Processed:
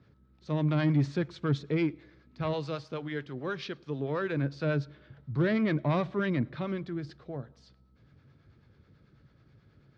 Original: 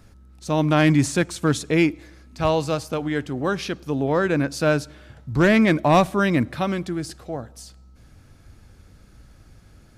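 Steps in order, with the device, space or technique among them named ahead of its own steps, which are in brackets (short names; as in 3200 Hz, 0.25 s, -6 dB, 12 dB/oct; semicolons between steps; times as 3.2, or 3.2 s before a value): 2.53–4.37 tilt +2 dB/oct; guitar amplifier with harmonic tremolo (harmonic tremolo 9.2 Hz, depth 50%, crossover 540 Hz; soft clip -14 dBFS, distortion -15 dB; speaker cabinet 91–4100 Hz, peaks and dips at 140 Hz +9 dB, 410 Hz +4 dB, 760 Hz -6 dB, 2700 Hz -4 dB); gain -7 dB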